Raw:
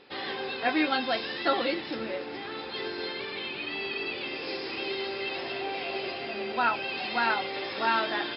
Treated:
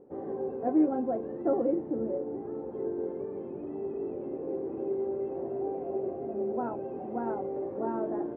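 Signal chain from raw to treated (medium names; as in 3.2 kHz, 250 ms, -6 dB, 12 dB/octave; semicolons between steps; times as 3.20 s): four-pole ladder low-pass 660 Hz, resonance 20%; trim +8 dB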